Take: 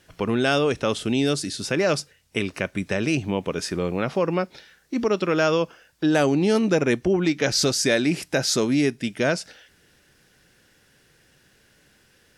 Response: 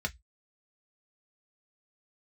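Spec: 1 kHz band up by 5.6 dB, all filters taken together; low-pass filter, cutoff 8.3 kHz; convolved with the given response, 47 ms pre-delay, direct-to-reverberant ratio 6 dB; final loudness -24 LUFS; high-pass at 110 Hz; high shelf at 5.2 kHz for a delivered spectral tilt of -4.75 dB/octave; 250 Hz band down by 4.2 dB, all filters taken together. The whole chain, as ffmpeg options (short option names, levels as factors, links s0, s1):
-filter_complex "[0:a]highpass=110,lowpass=8300,equalizer=f=250:t=o:g=-6,equalizer=f=1000:t=o:g=8.5,highshelf=f=5200:g=-8,asplit=2[s0][s1];[1:a]atrim=start_sample=2205,adelay=47[s2];[s1][s2]afir=irnorm=-1:irlink=0,volume=0.299[s3];[s0][s3]amix=inputs=2:normalize=0,volume=0.891"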